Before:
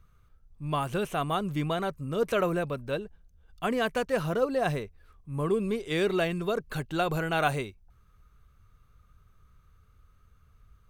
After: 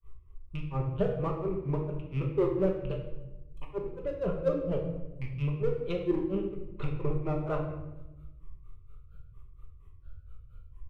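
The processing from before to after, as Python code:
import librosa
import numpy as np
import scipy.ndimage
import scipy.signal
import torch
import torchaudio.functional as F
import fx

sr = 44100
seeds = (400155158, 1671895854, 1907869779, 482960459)

p1 = fx.rattle_buzz(x, sr, strikes_db=-39.0, level_db=-30.0)
p2 = fx.env_lowpass_down(p1, sr, base_hz=990.0, full_db=-26.5)
p3 = fx.low_shelf(p2, sr, hz=480.0, db=12.0)
p4 = fx.fixed_phaser(p3, sr, hz=1100.0, stages=8)
p5 = np.clip(p4, -10.0 ** (-28.5 / 20.0), 10.0 ** (-28.5 / 20.0))
p6 = p4 + (p5 * librosa.db_to_amplitude(-4.5))
p7 = fx.granulator(p6, sr, seeds[0], grain_ms=176.0, per_s=4.3, spray_ms=100.0, spread_st=3)
p8 = fx.room_shoebox(p7, sr, seeds[1], volume_m3=390.0, walls='mixed', distance_m=1.2)
y = p8 * librosa.db_to_amplitude(-5.0)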